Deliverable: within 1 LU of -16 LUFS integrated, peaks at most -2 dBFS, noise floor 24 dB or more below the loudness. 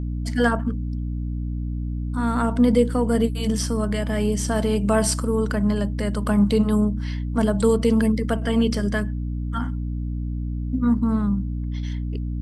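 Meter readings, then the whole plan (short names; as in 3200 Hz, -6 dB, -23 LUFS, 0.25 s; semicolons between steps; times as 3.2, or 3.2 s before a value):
hum 60 Hz; harmonics up to 300 Hz; hum level -24 dBFS; loudness -23.0 LUFS; peak -6.5 dBFS; loudness target -16.0 LUFS
-> notches 60/120/180/240/300 Hz; gain +7 dB; limiter -2 dBFS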